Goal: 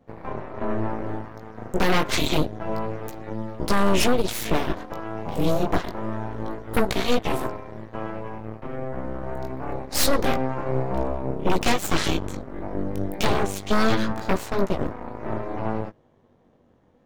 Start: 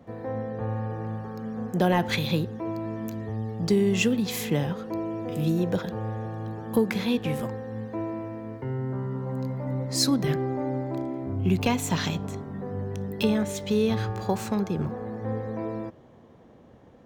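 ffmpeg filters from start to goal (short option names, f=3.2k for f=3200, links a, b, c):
-af "flanger=delay=15.5:depth=5.5:speed=0.27,aeval=exprs='0.251*(cos(1*acos(clip(val(0)/0.251,-1,1)))-cos(1*PI/2))+0.0355*(cos(3*acos(clip(val(0)/0.251,-1,1)))-cos(3*PI/2))+0.126*(cos(8*acos(clip(val(0)/0.251,-1,1)))-cos(8*PI/2))':c=same"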